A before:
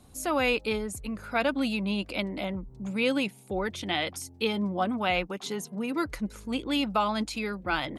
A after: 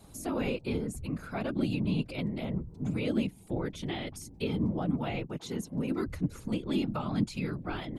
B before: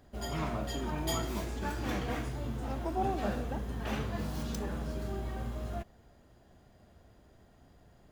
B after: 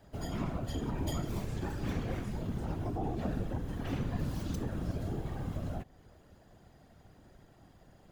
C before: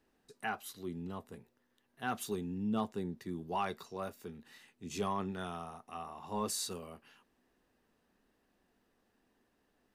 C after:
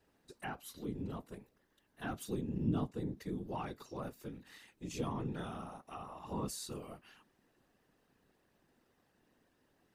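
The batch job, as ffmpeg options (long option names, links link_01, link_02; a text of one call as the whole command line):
ffmpeg -i in.wav -filter_complex "[0:a]afftfilt=real='hypot(re,im)*cos(2*PI*random(0))':imag='hypot(re,im)*sin(2*PI*random(1))':win_size=512:overlap=0.75,acrossover=split=350[link_01][link_02];[link_02]acompressor=threshold=-56dB:ratio=2[link_03];[link_01][link_03]amix=inputs=2:normalize=0,volume=7.5dB" out.wav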